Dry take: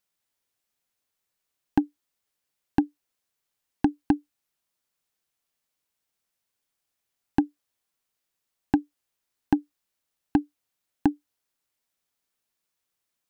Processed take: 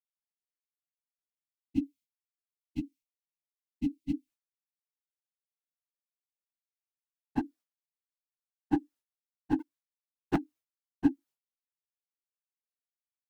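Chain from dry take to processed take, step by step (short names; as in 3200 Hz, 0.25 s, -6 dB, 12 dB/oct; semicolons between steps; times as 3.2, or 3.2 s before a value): phase scrambler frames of 50 ms; 1.7–4.28 spectral gain 320–2000 Hz -28 dB; 9.59–10.36 sample leveller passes 3; expander -46 dBFS; gain -6 dB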